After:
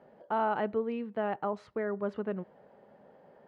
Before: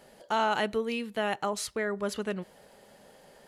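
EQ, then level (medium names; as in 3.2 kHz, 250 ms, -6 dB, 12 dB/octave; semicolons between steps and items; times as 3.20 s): high-pass 100 Hz; low-pass 1.2 kHz 12 dB/octave; -1.0 dB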